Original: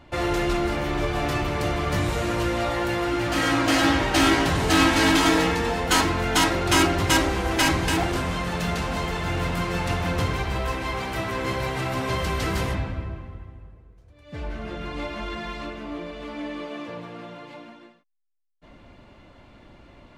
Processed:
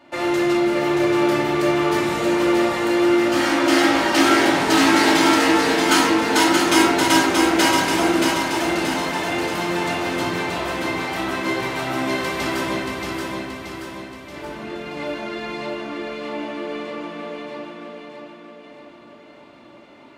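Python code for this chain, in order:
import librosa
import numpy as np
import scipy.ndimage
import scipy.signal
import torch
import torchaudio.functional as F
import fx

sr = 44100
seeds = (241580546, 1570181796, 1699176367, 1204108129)

p1 = scipy.signal.sosfilt(scipy.signal.butter(2, 260.0, 'highpass', fs=sr, output='sos'), x)
p2 = p1 + fx.echo_feedback(p1, sr, ms=628, feedback_pct=51, wet_db=-4.0, dry=0)
y = fx.room_shoebox(p2, sr, seeds[0], volume_m3=1000.0, walls='furnished', distance_m=2.6)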